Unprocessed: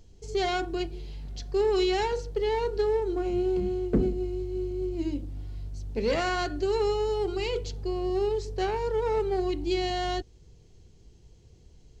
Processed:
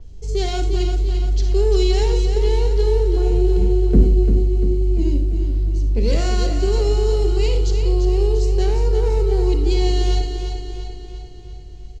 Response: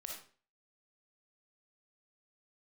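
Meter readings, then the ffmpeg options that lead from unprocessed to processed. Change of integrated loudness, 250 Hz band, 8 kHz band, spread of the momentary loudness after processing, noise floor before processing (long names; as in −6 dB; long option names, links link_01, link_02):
+9.5 dB, +6.5 dB, can't be measured, 8 LU, −55 dBFS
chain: -filter_complex "[0:a]lowshelf=frequency=110:gain=11.5,acrossover=split=480|3000[link_01][link_02][link_03];[link_02]acompressor=threshold=-48dB:ratio=2[link_04];[link_01][link_04][link_03]amix=inputs=3:normalize=0,aecho=1:1:345|690|1035|1380|1725|2070|2415:0.422|0.236|0.132|0.0741|0.0415|0.0232|0.013,asplit=2[link_05][link_06];[1:a]atrim=start_sample=2205[link_07];[link_06][link_07]afir=irnorm=-1:irlink=0,volume=3.5dB[link_08];[link_05][link_08]amix=inputs=2:normalize=0,adynamicequalizer=threshold=0.00562:dfrequency=5600:dqfactor=0.7:tfrequency=5600:tqfactor=0.7:attack=5:release=100:ratio=0.375:range=3:mode=boostabove:tftype=highshelf"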